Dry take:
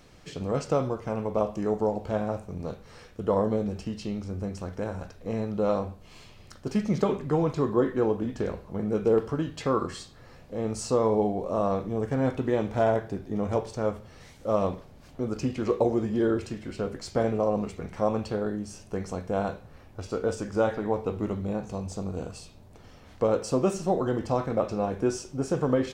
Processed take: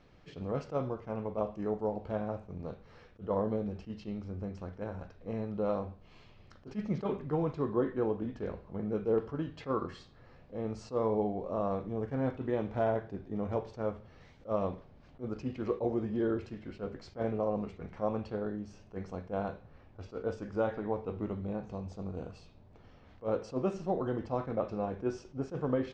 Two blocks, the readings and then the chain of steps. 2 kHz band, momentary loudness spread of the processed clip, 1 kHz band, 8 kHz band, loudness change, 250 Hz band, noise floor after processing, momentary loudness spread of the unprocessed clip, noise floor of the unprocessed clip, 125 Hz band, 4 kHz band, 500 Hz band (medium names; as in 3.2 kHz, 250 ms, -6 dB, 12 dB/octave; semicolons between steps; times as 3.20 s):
-8.0 dB, 12 LU, -7.0 dB, under -20 dB, -7.0 dB, -7.0 dB, -58 dBFS, 11 LU, -51 dBFS, -7.0 dB, under -10 dB, -7.0 dB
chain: distance through air 190 m; attacks held to a fixed rise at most 320 dB/s; trim -6 dB